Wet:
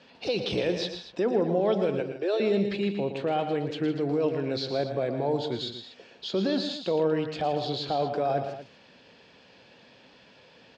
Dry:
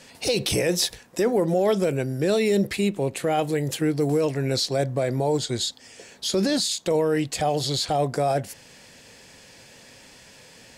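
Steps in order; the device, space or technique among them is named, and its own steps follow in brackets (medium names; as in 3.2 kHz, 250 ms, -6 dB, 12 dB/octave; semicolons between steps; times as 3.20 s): 2.00–2.40 s: elliptic high-pass 340 Hz; guitar cabinet (cabinet simulation 86–4000 Hz, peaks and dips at 94 Hz -7 dB, 140 Hz -4 dB, 2 kHz -7 dB); multi-tap echo 115/159/236 ms -9/-12/-14 dB; trim -4 dB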